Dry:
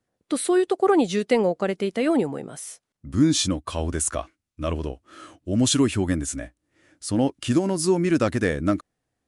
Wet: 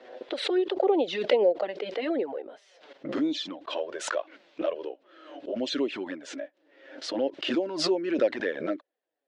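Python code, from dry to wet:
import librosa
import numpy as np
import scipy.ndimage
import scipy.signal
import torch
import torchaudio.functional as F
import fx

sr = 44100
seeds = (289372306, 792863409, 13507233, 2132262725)

y = fx.env_flanger(x, sr, rest_ms=8.0, full_db=-15.0)
y = fx.cabinet(y, sr, low_hz=340.0, low_slope=24, high_hz=3800.0, hz=(560.0, 1200.0, 2300.0), db=(8, -7, -3))
y = fx.pre_swell(y, sr, db_per_s=72.0)
y = y * 10.0 ** (-3.0 / 20.0)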